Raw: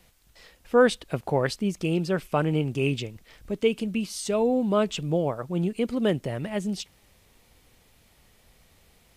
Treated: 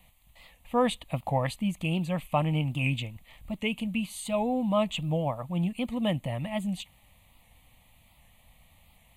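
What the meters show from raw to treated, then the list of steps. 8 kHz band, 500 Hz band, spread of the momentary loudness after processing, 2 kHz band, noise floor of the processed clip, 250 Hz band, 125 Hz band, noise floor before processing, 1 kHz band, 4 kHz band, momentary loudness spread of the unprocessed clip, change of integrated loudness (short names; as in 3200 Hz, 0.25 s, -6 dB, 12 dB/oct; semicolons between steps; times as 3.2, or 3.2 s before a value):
-5.0 dB, -7.0 dB, 7 LU, -3.5 dB, -61 dBFS, -3.0 dB, -0.5 dB, -61 dBFS, 0.0 dB, -1.5 dB, 9 LU, -3.5 dB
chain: fixed phaser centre 1500 Hz, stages 6; record warp 78 rpm, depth 100 cents; gain +1.5 dB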